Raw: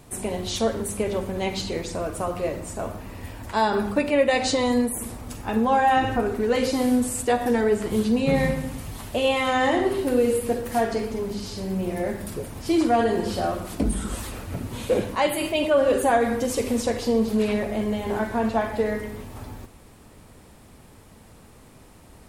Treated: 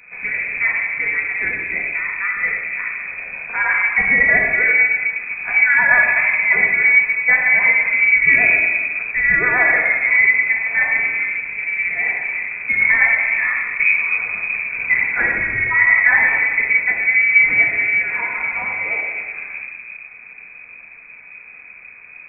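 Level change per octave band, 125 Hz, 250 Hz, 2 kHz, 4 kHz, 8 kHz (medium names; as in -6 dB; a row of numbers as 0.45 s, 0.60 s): no reading, -15.5 dB, +21.0 dB, under -25 dB, under -40 dB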